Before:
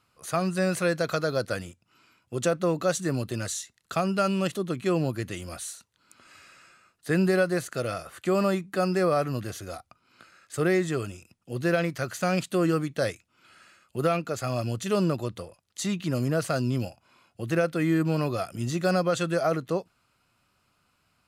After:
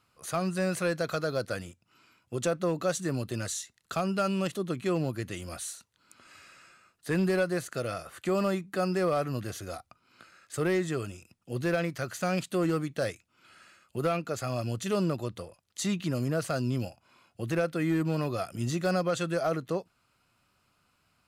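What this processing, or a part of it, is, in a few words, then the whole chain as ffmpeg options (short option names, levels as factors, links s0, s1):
clipper into limiter: -af "asoftclip=type=hard:threshold=0.141,alimiter=limit=0.106:level=0:latency=1:release=412,volume=0.891"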